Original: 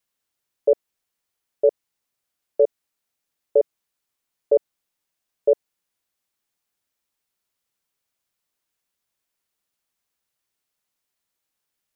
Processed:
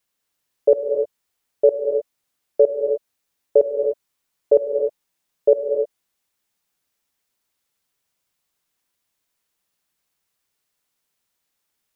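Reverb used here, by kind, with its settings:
reverb whose tail is shaped and stops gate 330 ms rising, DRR 4 dB
level +3 dB

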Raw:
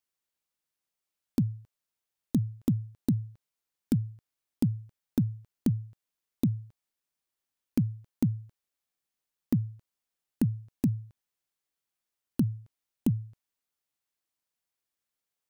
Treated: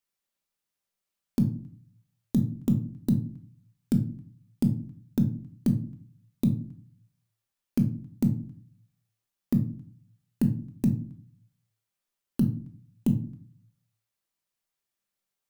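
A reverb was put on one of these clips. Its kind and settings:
rectangular room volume 370 cubic metres, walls furnished, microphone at 1.2 metres

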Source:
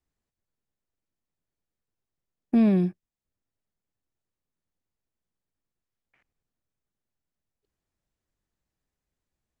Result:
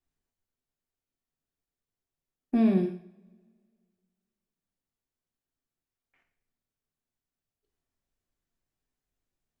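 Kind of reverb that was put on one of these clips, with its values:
coupled-rooms reverb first 0.52 s, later 2.1 s, from −27 dB, DRR 2 dB
level −4.5 dB

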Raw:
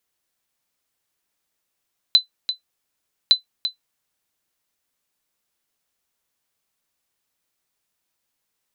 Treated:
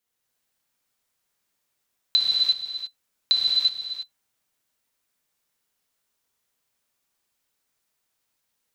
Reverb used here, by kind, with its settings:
reverb whose tail is shaped and stops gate 390 ms flat, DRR −5.5 dB
level −5.5 dB

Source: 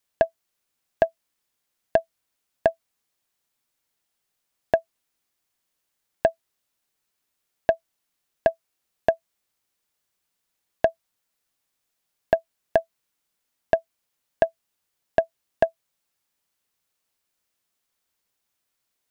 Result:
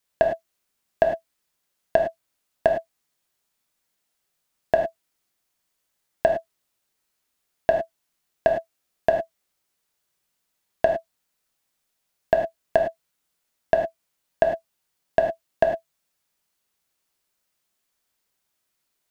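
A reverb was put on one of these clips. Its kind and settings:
reverb whose tail is shaped and stops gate 130 ms flat, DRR 2.5 dB

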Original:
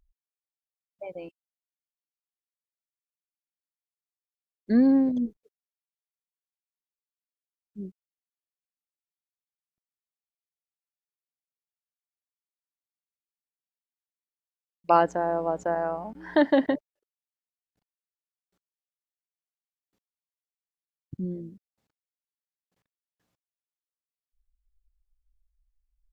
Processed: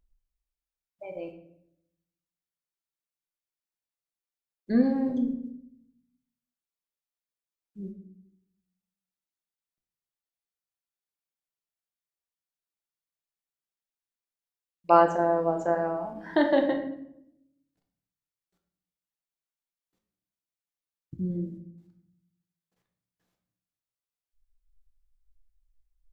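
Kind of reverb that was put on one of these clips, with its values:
rectangular room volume 170 cubic metres, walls mixed, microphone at 0.72 metres
level −2.5 dB

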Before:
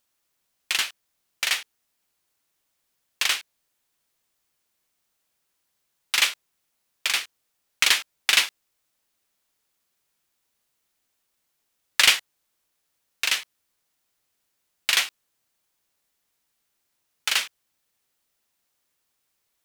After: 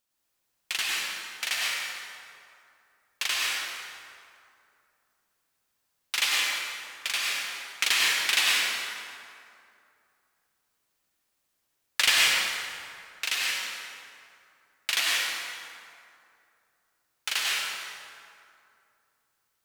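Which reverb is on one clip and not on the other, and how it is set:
dense smooth reverb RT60 2.5 s, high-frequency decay 0.6×, pre-delay 85 ms, DRR −5 dB
level −6.5 dB

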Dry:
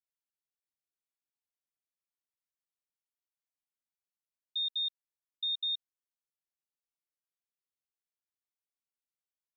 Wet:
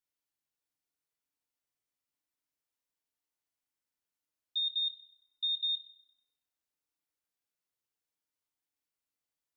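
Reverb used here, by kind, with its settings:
feedback delay network reverb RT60 1.2 s, low-frequency decay 1.3×, high-frequency decay 0.65×, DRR 1.5 dB
level +1 dB

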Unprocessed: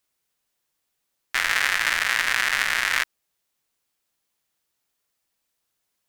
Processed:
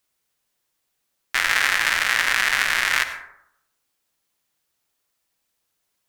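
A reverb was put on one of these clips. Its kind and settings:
dense smooth reverb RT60 0.76 s, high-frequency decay 0.4×, pre-delay 75 ms, DRR 9.5 dB
level +2 dB

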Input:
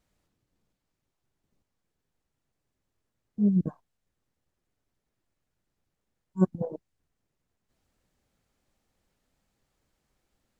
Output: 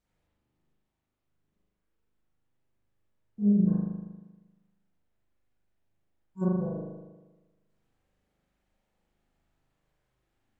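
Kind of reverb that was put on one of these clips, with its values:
spring reverb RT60 1.2 s, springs 39 ms, chirp 50 ms, DRR −7 dB
level −8.5 dB

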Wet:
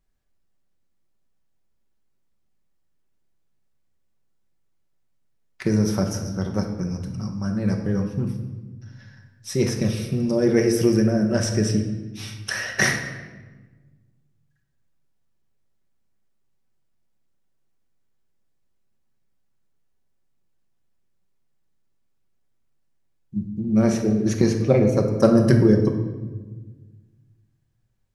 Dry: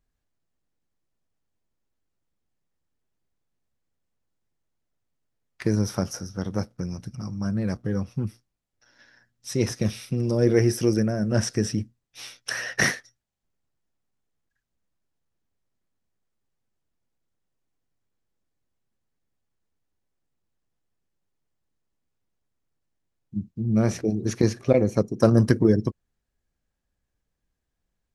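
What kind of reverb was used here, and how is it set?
rectangular room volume 940 cubic metres, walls mixed, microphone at 1.1 metres
level +1 dB

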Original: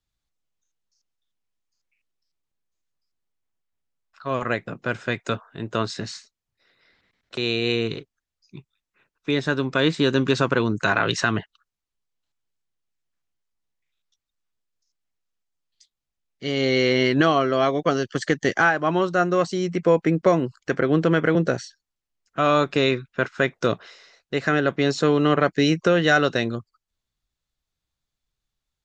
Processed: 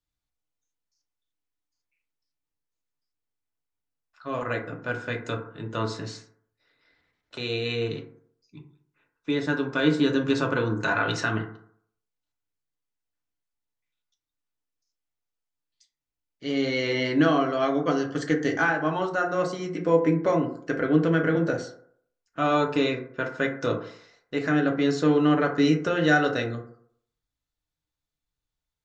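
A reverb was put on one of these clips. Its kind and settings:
feedback delay network reverb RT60 0.62 s, low-frequency decay 0.9×, high-frequency decay 0.35×, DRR 1 dB
level −7 dB

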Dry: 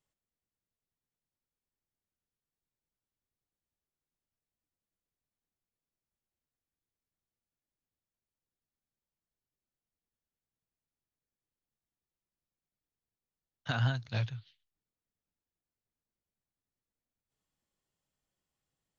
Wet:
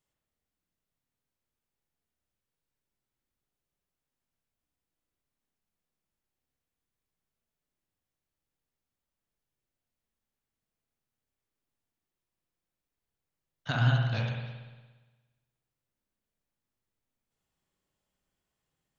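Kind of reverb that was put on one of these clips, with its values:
spring reverb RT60 1.3 s, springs 58 ms, chirp 70 ms, DRR −0.5 dB
level +1.5 dB

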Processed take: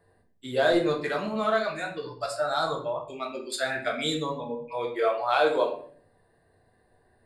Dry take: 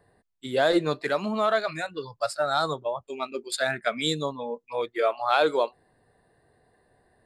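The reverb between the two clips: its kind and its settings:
rectangular room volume 67 cubic metres, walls mixed, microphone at 0.67 metres
level −4 dB

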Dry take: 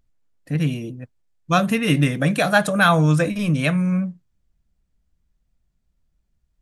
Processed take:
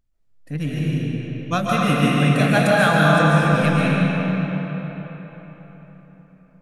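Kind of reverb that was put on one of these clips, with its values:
comb and all-pass reverb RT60 4.3 s, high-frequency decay 0.65×, pre-delay 100 ms, DRR −6.5 dB
level −5 dB

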